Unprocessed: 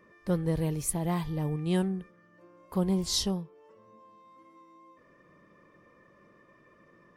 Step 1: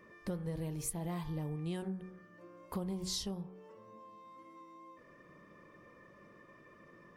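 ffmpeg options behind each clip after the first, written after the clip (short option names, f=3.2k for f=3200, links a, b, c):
-af "bandreject=f=46.39:t=h:w=4,bandreject=f=92.78:t=h:w=4,bandreject=f=139.17:t=h:w=4,bandreject=f=185.56:t=h:w=4,bandreject=f=231.95:t=h:w=4,bandreject=f=278.34:t=h:w=4,bandreject=f=324.73:t=h:w=4,bandreject=f=371.12:t=h:w=4,bandreject=f=417.51:t=h:w=4,bandreject=f=463.9:t=h:w=4,bandreject=f=510.29:t=h:w=4,bandreject=f=556.68:t=h:w=4,bandreject=f=603.07:t=h:w=4,bandreject=f=649.46:t=h:w=4,bandreject=f=695.85:t=h:w=4,bandreject=f=742.24:t=h:w=4,bandreject=f=788.63:t=h:w=4,bandreject=f=835.02:t=h:w=4,bandreject=f=881.41:t=h:w=4,bandreject=f=927.8:t=h:w=4,bandreject=f=974.19:t=h:w=4,bandreject=f=1.02058k:t=h:w=4,bandreject=f=1.06697k:t=h:w=4,bandreject=f=1.11336k:t=h:w=4,bandreject=f=1.15975k:t=h:w=4,bandreject=f=1.20614k:t=h:w=4,bandreject=f=1.25253k:t=h:w=4,bandreject=f=1.29892k:t=h:w=4,bandreject=f=1.34531k:t=h:w=4,bandreject=f=1.3917k:t=h:w=4,bandreject=f=1.43809k:t=h:w=4,bandreject=f=1.48448k:t=h:w=4,bandreject=f=1.53087k:t=h:w=4,bandreject=f=1.57726k:t=h:w=4,bandreject=f=1.62365k:t=h:w=4,bandreject=f=1.67004k:t=h:w=4,bandreject=f=1.71643k:t=h:w=4,acompressor=threshold=-38dB:ratio=5,volume=1.5dB"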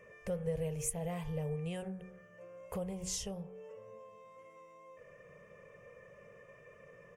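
-af "firequalizer=gain_entry='entry(140,0);entry(310,-20);entry(460,7);entry(960,-7);entry(2700,4);entry(4000,-14);entry(6500,3);entry(13000,-5)':delay=0.05:min_phase=1,volume=2.5dB"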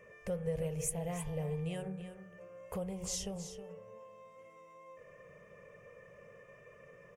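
-af "aecho=1:1:319:0.282"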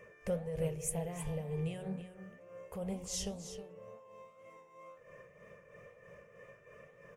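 -af "tremolo=f=3.1:d=0.6,flanger=delay=7:depth=9.7:regen=84:speed=2:shape=triangular,volume=7dB"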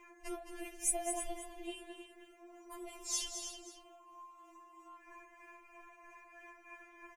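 -af "aecho=1:1:216:0.376,afftfilt=real='re*4*eq(mod(b,16),0)':imag='im*4*eq(mod(b,16),0)':win_size=2048:overlap=0.75,volume=6dB"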